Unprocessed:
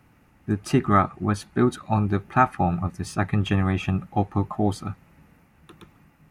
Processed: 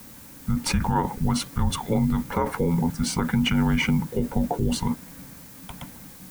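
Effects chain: in parallel at -2 dB: compressor with a negative ratio -31 dBFS; on the sum: added noise blue -47 dBFS; frequency shift -340 Hz; peak limiter -12.5 dBFS, peak gain reduction 9.5 dB

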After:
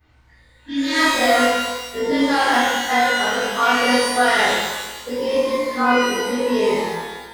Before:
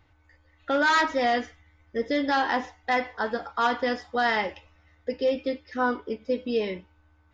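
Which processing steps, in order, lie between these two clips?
short-time spectra conjugated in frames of 57 ms; spectral replace 0.58–1.00 s, 340–1600 Hz both; pitch-shifted reverb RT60 1.2 s, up +12 st, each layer -8 dB, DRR -11.5 dB

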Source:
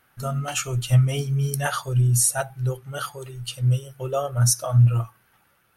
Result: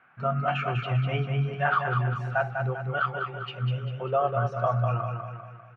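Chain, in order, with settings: peak limiter -17.5 dBFS, peak gain reduction 10 dB; cabinet simulation 120–2700 Hz, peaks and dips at 180 Hz +9 dB, 720 Hz +9 dB, 1.1 kHz +8 dB, 1.5 kHz +8 dB, 2.4 kHz +8 dB; on a send: feedback delay 198 ms, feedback 48%, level -5.5 dB; on the sum: trim -3 dB

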